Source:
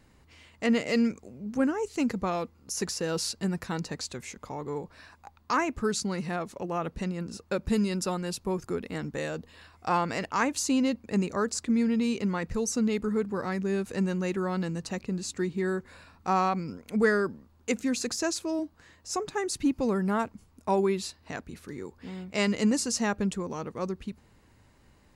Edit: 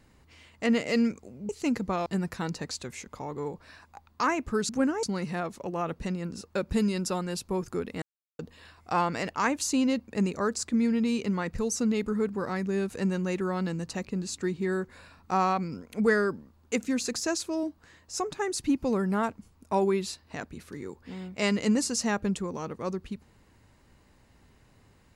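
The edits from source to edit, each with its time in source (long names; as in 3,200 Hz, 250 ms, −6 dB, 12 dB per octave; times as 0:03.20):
0:01.49–0:01.83: move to 0:05.99
0:02.40–0:03.36: remove
0:08.98–0:09.35: silence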